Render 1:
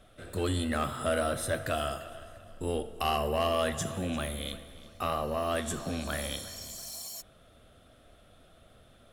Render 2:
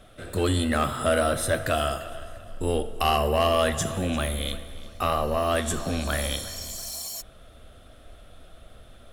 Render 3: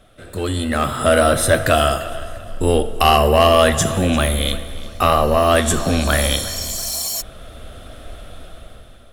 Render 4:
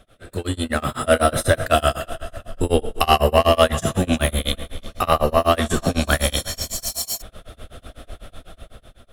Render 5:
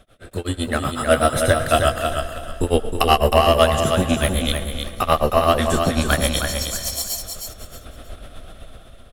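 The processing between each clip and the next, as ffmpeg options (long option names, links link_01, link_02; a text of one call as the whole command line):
ffmpeg -i in.wav -af "asubboost=boost=2.5:cutoff=73,volume=6.5dB" out.wav
ffmpeg -i in.wav -af "dynaudnorm=framelen=260:gausssize=7:maxgain=13dB" out.wav
ffmpeg -i in.wav -af "tremolo=f=8:d=0.98,volume=1dB" out.wav
ffmpeg -i in.wav -af "aecho=1:1:314|628|942:0.501|0.13|0.0339" out.wav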